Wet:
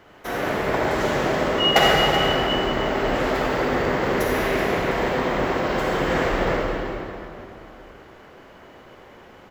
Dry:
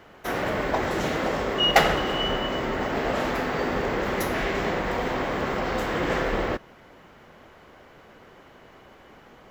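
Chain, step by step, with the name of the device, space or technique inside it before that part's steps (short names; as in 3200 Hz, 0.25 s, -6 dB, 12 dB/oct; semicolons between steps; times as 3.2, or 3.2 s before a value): cave (echo 0.38 s -13 dB; reverb RT60 2.8 s, pre-delay 42 ms, DRR -3 dB); gain -1 dB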